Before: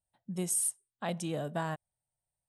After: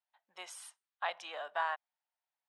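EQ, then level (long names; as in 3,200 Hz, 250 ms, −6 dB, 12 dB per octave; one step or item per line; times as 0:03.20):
high-pass filter 850 Hz 24 dB per octave
high-frequency loss of the air 250 metres
+7.0 dB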